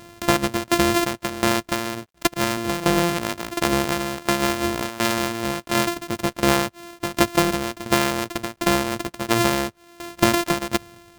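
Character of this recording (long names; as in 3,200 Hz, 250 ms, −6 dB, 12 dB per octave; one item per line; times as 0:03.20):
a buzz of ramps at a fixed pitch in blocks of 128 samples
tremolo saw down 1.4 Hz, depth 85%
a quantiser's noise floor 12 bits, dither none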